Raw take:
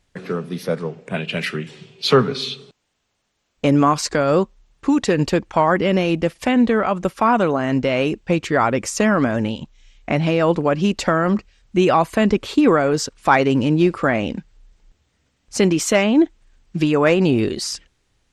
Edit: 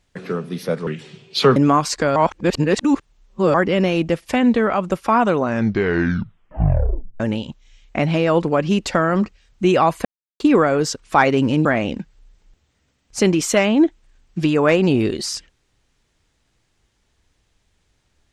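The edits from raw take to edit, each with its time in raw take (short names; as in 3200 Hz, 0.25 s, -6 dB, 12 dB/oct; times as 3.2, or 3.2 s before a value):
0.87–1.55 cut
2.24–3.69 cut
4.29–5.67 reverse
7.46 tape stop 1.87 s
12.18–12.53 mute
13.78–14.03 cut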